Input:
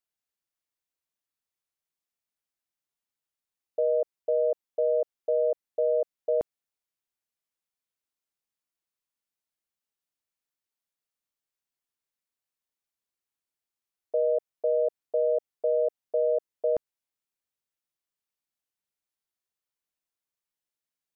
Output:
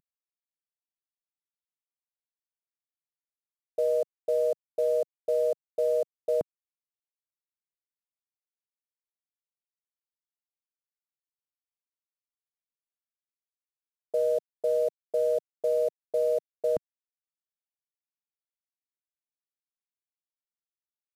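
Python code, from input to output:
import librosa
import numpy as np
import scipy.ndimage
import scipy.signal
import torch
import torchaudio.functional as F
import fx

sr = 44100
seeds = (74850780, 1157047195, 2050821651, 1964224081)

y = fx.cvsd(x, sr, bps=64000)
y = fx.peak_eq(y, sr, hz=160.0, db=8.5, octaves=1.7)
y = y * 10.0 ** (-2.0 / 20.0)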